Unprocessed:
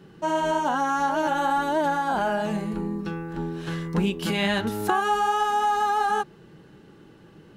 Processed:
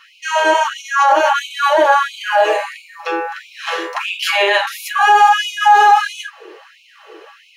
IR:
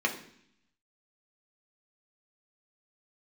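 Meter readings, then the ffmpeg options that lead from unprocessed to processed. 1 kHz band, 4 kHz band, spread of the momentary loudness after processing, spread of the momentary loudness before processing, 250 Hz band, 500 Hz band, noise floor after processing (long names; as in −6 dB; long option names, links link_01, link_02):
+10.5 dB, +13.0 dB, 14 LU, 9 LU, −6.0 dB, +9.5 dB, −49 dBFS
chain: -filter_complex "[1:a]atrim=start_sample=2205,afade=type=out:start_time=0.13:duration=0.01,atrim=end_sample=6174[link_01];[0:a][link_01]afir=irnorm=-1:irlink=0,alimiter=level_in=10dB:limit=-1dB:release=50:level=0:latency=1,afftfilt=real='re*gte(b*sr/1024,320*pow(2200/320,0.5+0.5*sin(2*PI*1.5*pts/sr)))':imag='im*gte(b*sr/1024,320*pow(2200/320,0.5+0.5*sin(2*PI*1.5*pts/sr)))':win_size=1024:overlap=0.75,volume=-1dB"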